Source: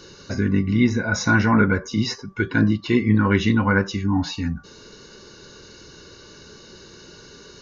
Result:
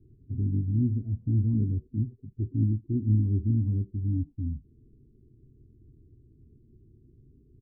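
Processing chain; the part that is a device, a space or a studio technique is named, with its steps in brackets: the neighbour's flat through the wall (LPF 230 Hz 24 dB/oct; bell 130 Hz +7 dB 0.88 oct); comb 2.8 ms, depth 83%; gain -7 dB

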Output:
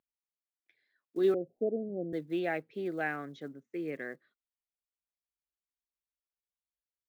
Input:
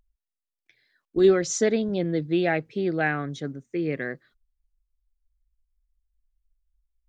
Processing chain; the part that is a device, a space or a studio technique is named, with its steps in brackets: early digital voice recorder (BPF 230–3400 Hz; block floating point 7-bit); 1.34–2.13 steep low-pass 760 Hz 72 dB/oct; gain -8.5 dB

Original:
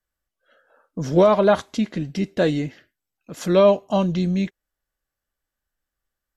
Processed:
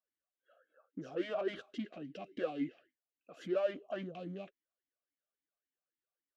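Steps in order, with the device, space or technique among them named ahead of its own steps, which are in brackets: talk box (tube stage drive 25 dB, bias 0.4; vowel sweep a-i 3.6 Hz); gain +1 dB

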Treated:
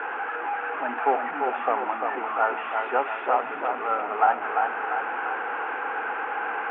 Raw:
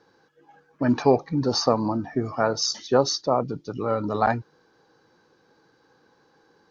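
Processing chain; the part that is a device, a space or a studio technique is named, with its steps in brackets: digital answering machine (BPF 320–3200 Hz; delta modulation 16 kbps, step -24.5 dBFS; speaker cabinet 350–3700 Hz, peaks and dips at 350 Hz -6 dB, 550 Hz -7 dB, 790 Hz +7 dB, 1400 Hz +9 dB, 2600 Hz +6 dB); three-band isolator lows -16 dB, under 220 Hz, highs -23 dB, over 2100 Hz; dark delay 0.345 s, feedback 52%, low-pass 3600 Hz, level -5 dB; gain -1.5 dB

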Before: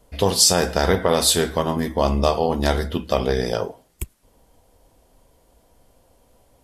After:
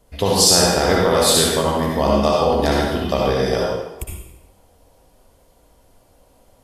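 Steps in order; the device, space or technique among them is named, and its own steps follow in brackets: bathroom (reverb RT60 0.95 s, pre-delay 56 ms, DRR -3 dB); gain -1 dB

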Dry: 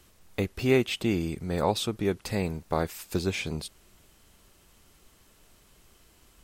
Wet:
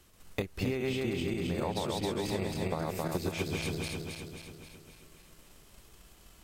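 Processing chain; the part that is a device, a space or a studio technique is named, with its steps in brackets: regenerating reverse delay 0.134 s, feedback 74%, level -1 dB; drum-bus smash (transient shaper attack +7 dB, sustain +1 dB; compressor 6:1, threshold -25 dBFS, peak gain reduction 11.5 dB; soft clip -13.5 dBFS, distortion -27 dB); gain -3.5 dB

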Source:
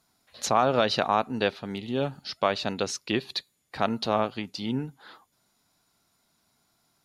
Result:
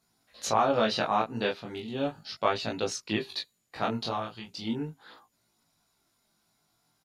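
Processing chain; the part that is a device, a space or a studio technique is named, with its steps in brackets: 4.09–4.49 graphic EQ 250/500/2000 Hz -11/-5/-6 dB; double-tracked vocal (doubler 18 ms -2.5 dB; chorus 0.37 Hz, delay 17.5 ms, depth 7.4 ms); gain -1.5 dB

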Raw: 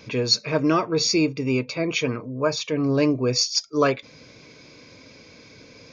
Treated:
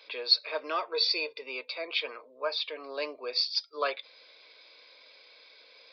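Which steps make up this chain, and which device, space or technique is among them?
0.93–1.42 comb 2 ms, depth 77%; musical greeting card (downsampling 11025 Hz; HPF 530 Hz 24 dB/oct; bell 3700 Hz +9 dB 0.53 oct); gain -7.5 dB

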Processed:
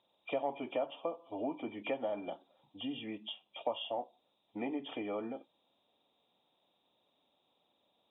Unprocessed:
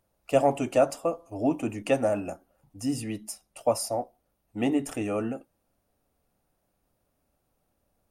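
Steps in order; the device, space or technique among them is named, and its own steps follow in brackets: hearing aid with frequency lowering (nonlinear frequency compression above 2300 Hz 4:1; compressor 3:1, threshold -35 dBFS, peak gain reduction 14.5 dB; speaker cabinet 260–6300 Hz, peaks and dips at 930 Hz +7 dB, 1500 Hz -8 dB, 3200 Hz -5 dB); gain -1 dB

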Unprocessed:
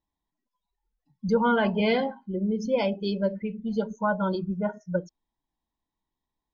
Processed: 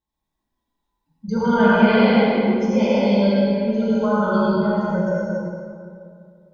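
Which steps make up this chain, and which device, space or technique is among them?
stairwell (reverb RT60 2.3 s, pre-delay 74 ms, DRR -5 dB); non-linear reverb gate 0.47 s falling, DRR -5.5 dB; gain -4.5 dB

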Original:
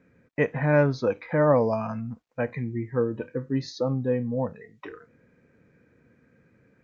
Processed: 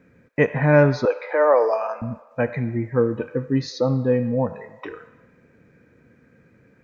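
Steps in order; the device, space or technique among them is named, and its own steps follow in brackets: filtered reverb send (on a send: HPF 570 Hz 24 dB/oct + LPF 4100 Hz + reverb RT60 1.3 s, pre-delay 56 ms, DRR 12 dB); 1.05–2.02 on the sum: elliptic high-pass 370 Hz, stop band 60 dB; gain +5.5 dB

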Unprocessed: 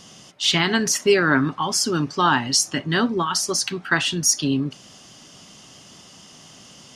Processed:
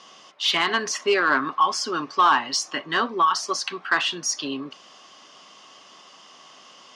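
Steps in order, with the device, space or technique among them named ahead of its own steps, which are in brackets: intercom (BPF 450–4400 Hz; bell 1100 Hz +10.5 dB 0.21 oct; soft clip -9 dBFS, distortion -18 dB)

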